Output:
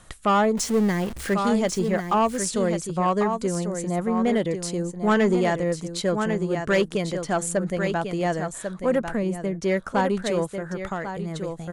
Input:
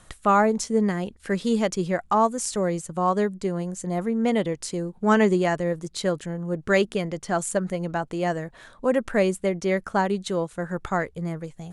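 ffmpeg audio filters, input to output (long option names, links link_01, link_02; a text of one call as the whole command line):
ffmpeg -i in.wav -filter_complex "[0:a]asettb=1/sr,asplit=3[link_01][link_02][link_03];[link_01]atrim=end=0.574[link_04];[link_02]atrim=start=0.57:end=1.34,asetpts=PTS-STARTPTS,afade=type=in:duration=0.004:curve=qsin,afade=type=out:start_time=0.766:duration=0.004:curve=qsin,aeval=exprs='val(0)+0.5*0.0266*sgn(val(0))':channel_layout=same[link_05];[link_03]atrim=start=1.336[link_06];[link_04][link_05]acrossfade=duration=0.004:curve1=hsin:curve2=qsin[link_07];[link_07][link_06]acrossfade=duration=0.004:curve1=qsin:curve2=hsin,aecho=1:1:1095:0.398,asettb=1/sr,asplit=3[link_08][link_09][link_10];[link_08]atrim=end=9.094[link_11];[link_09]atrim=start=9.09:end=9.63,asetpts=PTS-STARTPTS,afade=type=in:duration=0.004:curve=qsin,afade=type=out:start_time=0.536:duration=0.004:curve=qsin,acrossover=split=320[link_12][link_13];[link_13]acompressor=threshold=-33dB:ratio=5[link_14];[link_12][link_14]amix=inputs=2:normalize=0[link_15];[link_10]atrim=start=9.626[link_16];[link_11][link_15]acrossfade=duration=0.004:curve1=hsin:curve2=qsin[link_17];[link_17][link_16]acrossfade=duration=0.004:curve1=qsin:curve2=hsin,asoftclip=type=tanh:threshold=-14.5dB,asplit=3[link_18][link_19][link_20];[link_18]afade=type=out:start_time=10.5:duration=0.02[link_21];[link_19]acompressor=threshold=-28dB:ratio=6,afade=type=in:start_time=10.5:duration=0.02,afade=type=out:start_time=11.34:duration=0.02[link_22];[link_20]afade=type=in:start_time=11.34:duration=0.02[link_23];[link_21][link_22][link_23]amix=inputs=3:normalize=0,volume=1.5dB" out.wav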